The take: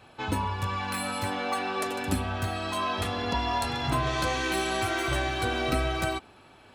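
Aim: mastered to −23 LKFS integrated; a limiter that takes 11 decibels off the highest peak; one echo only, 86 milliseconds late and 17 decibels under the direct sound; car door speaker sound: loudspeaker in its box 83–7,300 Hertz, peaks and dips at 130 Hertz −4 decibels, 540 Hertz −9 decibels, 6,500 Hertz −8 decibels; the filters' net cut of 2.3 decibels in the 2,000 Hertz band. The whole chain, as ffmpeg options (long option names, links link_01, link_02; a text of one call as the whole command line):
ffmpeg -i in.wav -af "equalizer=frequency=2000:width_type=o:gain=-3,alimiter=limit=-24dB:level=0:latency=1,highpass=83,equalizer=frequency=130:width_type=q:width=4:gain=-4,equalizer=frequency=540:width_type=q:width=4:gain=-9,equalizer=frequency=6500:width_type=q:width=4:gain=-8,lowpass=frequency=7300:width=0.5412,lowpass=frequency=7300:width=1.3066,aecho=1:1:86:0.141,volume=11dB" out.wav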